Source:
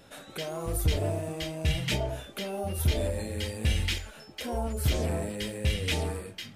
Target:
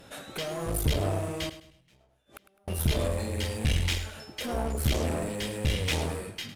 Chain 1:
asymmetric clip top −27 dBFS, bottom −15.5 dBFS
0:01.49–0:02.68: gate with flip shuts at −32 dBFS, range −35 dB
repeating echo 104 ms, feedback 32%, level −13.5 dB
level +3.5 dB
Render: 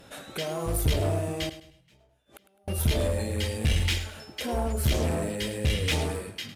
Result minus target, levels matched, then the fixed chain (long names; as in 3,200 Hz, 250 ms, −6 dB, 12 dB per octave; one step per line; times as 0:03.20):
asymmetric clip: distortion −4 dB
asymmetric clip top −36.5 dBFS, bottom −15.5 dBFS
0:01.49–0:02.68: gate with flip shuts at −32 dBFS, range −35 dB
repeating echo 104 ms, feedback 32%, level −13.5 dB
level +3.5 dB